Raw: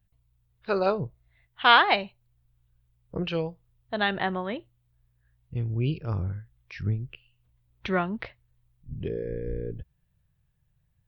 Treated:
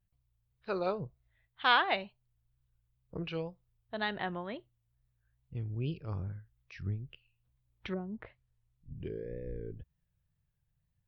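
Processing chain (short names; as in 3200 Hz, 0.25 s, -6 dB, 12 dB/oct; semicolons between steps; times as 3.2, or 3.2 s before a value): 7.92–8.94 treble ducked by the level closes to 390 Hz, closed at -24.5 dBFS; wow and flutter 89 cents; gain -8.5 dB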